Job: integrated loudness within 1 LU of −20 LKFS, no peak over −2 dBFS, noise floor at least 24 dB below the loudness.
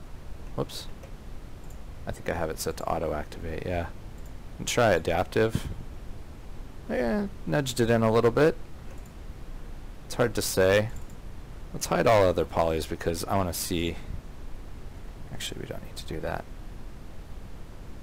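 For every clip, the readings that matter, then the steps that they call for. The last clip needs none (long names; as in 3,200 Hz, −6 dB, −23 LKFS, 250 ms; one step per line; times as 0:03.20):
share of clipped samples 0.6%; peaks flattened at −15.0 dBFS; background noise floor −44 dBFS; target noise floor −52 dBFS; integrated loudness −27.5 LKFS; sample peak −15.0 dBFS; target loudness −20.0 LKFS
→ clipped peaks rebuilt −15 dBFS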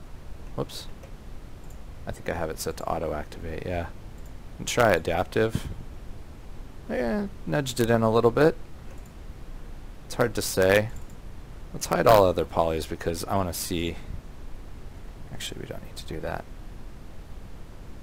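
share of clipped samples 0.0%; background noise floor −44 dBFS; target noise floor −50 dBFS
→ noise reduction from a noise print 6 dB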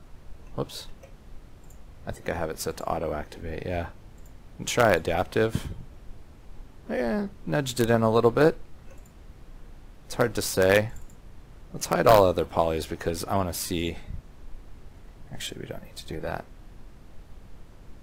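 background noise floor −49 dBFS; target noise floor −50 dBFS
→ noise reduction from a noise print 6 dB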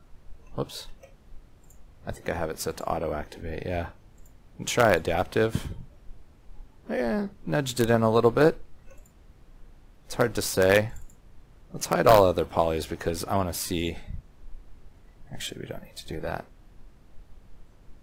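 background noise floor −55 dBFS; integrated loudness −26.0 LKFS; sample peak −6.0 dBFS; target loudness −20.0 LKFS
→ level +6 dB
brickwall limiter −2 dBFS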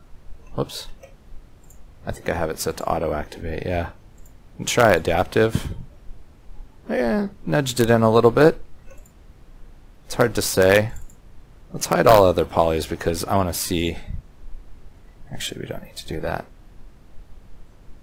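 integrated loudness −20.5 LKFS; sample peak −2.0 dBFS; background noise floor −49 dBFS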